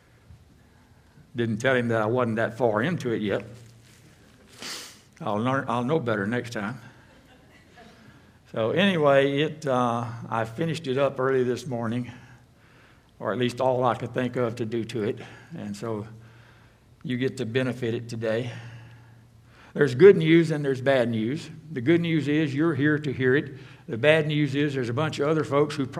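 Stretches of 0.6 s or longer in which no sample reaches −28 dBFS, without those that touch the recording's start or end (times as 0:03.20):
0:03.40–0:04.62
0:06.72–0:08.54
0:12.09–0:13.22
0:16.02–0:17.05
0:18.50–0:19.76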